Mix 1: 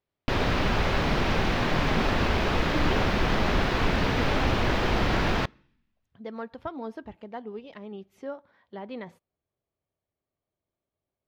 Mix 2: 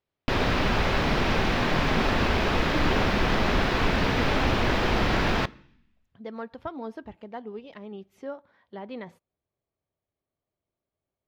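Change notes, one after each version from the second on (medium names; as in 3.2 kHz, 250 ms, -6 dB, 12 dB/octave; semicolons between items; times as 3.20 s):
background: send +9.0 dB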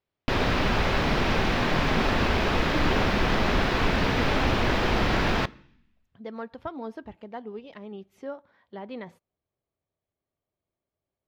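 no change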